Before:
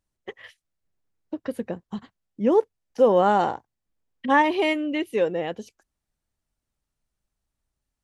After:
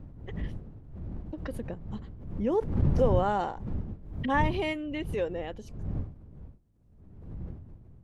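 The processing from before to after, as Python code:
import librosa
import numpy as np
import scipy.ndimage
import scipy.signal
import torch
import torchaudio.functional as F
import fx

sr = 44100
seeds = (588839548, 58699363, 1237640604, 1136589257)

y = fx.dmg_wind(x, sr, seeds[0], corner_hz=120.0, level_db=-27.0)
y = fx.pre_swell(y, sr, db_per_s=66.0)
y = y * librosa.db_to_amplitude(-8.5)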